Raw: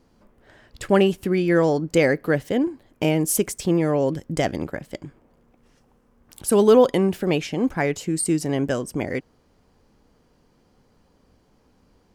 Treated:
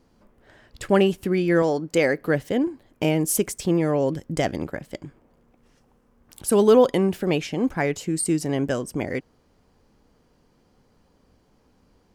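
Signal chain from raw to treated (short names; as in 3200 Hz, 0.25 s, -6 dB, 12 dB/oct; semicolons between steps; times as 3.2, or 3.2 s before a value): 1.62–2.18 low shelf 150 Hz -10.5 dB; gain -1 dB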